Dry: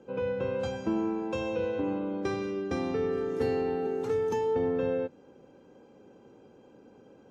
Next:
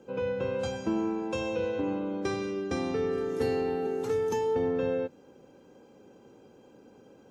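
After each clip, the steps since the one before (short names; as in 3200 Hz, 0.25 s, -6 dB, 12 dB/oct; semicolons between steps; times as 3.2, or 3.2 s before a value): high shelf 5000 Hz +9 dB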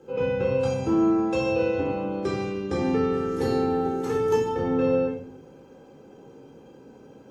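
shoebox room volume 880 m³, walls furnished, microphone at 4.1 m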